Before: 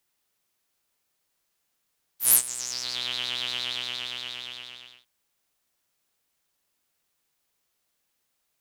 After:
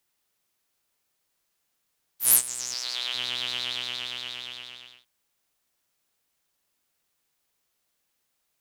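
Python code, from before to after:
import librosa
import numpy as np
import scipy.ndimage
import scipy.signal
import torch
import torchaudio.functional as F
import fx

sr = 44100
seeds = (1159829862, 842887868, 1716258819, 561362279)

y = fx.highpass(x, sr, hz=440.0, slope=12, at=(2.74, 3.15))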